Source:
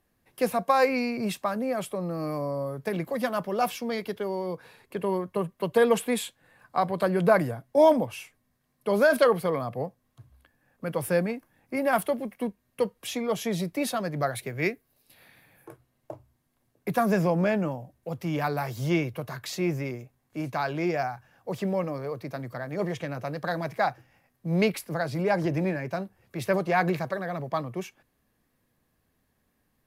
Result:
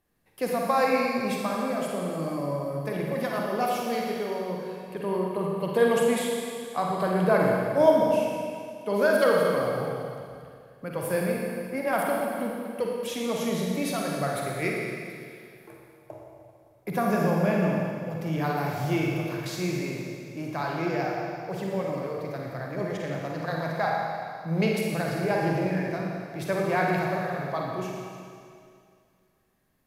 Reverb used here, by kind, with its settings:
four-comb reverb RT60 2.3 s, DRR −2 dB
level −3.5 dB

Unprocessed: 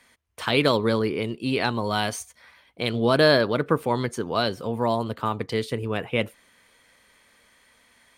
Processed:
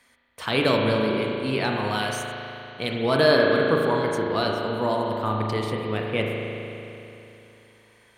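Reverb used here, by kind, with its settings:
spring reverb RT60 3.1 s, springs 37 ms, chirp 40 ms, DRR −0.5 dB
level −2.5 dB

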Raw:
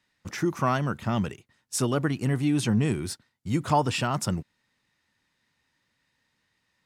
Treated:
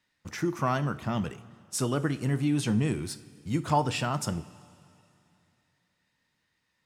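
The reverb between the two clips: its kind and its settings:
coupled-rooms reverb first 0.37 s, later 2.8 s, from −15 dB, DRR 11.5 dB
level −3 dB

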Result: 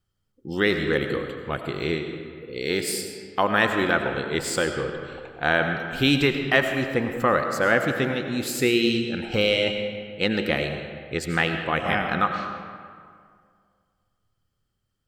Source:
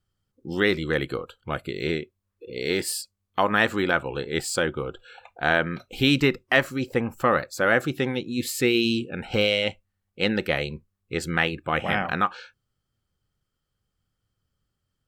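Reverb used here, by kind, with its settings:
comb and all-pass reverb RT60 2.1 s, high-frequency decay 0.6×, pre-delay 55 ms, DRR 5.5 dB

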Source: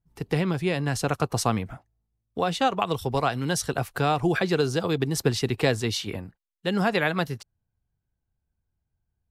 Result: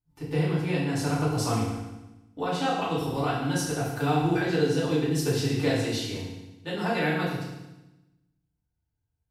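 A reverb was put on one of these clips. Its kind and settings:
feedback delay network reverb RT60 1 s, low-frequency decay 1.35×, high-frequency decay 1×, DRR −9 dB
level −12.5 dB

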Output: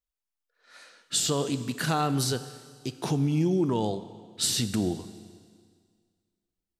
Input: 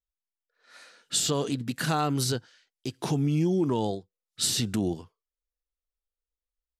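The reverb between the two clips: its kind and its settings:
four-comb reverb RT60 1.9 s, combs from 29 ms, DRR 12.5 dB

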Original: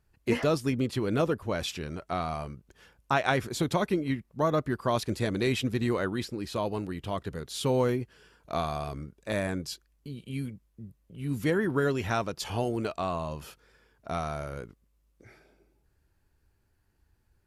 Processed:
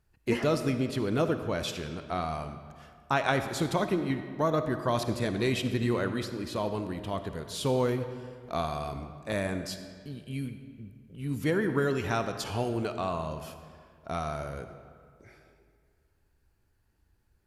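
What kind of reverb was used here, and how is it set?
comb and all-pass reverb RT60 2 s, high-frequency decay 0.7×, pre-delay 15 ms, DRR 8.5 dB
level −1 dB

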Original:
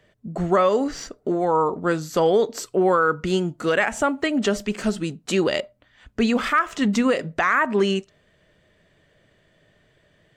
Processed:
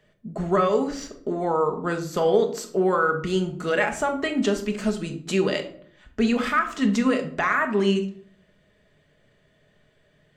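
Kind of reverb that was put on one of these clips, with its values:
rectangular room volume 780 cubic metres, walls furnished, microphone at 1.4 metres
level −4 dB

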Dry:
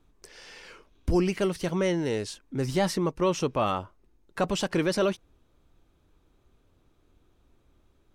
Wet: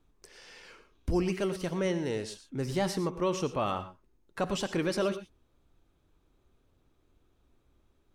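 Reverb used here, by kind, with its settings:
reverb whose tail is shaped and stops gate 140 ms rising, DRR 11 dB
level −4.5 dB

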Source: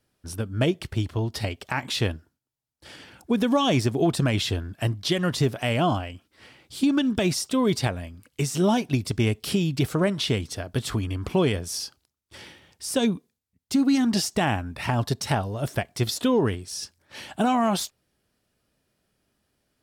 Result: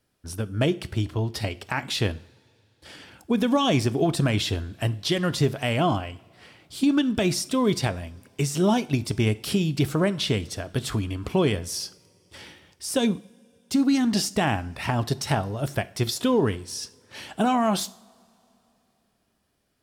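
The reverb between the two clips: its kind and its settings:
coupled-rooms reverb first 0.49 s, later 3.1 s, from −20 dB, DRR 15 dB

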